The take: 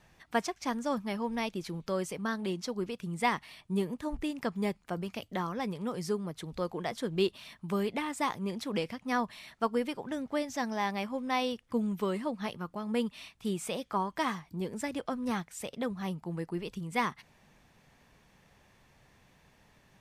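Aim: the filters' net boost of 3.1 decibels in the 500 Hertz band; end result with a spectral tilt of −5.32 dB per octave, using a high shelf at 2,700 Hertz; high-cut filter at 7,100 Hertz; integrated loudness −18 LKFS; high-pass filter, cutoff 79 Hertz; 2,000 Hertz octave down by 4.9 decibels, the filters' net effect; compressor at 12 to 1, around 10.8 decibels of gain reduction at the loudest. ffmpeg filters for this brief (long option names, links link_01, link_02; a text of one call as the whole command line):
ffmpeg -i in.wav -af "highpass=79,lowpass=7100,equalizer=frequency=500:width_type=o:gain=4,equalizer=frequency=2000:width_type=o:gain=-8,highshelf=frequency=2700:gain=4.5,acompressor=threshold=-33dB:ratio=12,volume=21dB" out.wav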